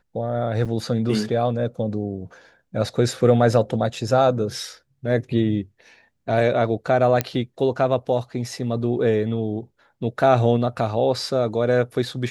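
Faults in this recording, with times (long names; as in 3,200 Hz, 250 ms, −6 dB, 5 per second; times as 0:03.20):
0:00.65–0:00.66: drop-out 6.5 ms
0:07.21: click −6 dBFS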